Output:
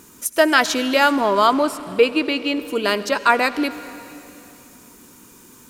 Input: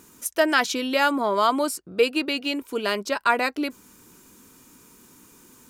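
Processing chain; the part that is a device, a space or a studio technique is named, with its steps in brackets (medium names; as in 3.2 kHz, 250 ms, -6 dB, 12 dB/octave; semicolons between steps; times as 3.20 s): 1.53–2.60 s: tone controls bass +1 dB, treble -9 dB; saturated reverb return (on a send at -11.5 dB: reverberation RT60 2.7 s, pre-delay 70 ms + saturation -21.5 dBFS, distortion -12 dB); on the sum: trim +5 dB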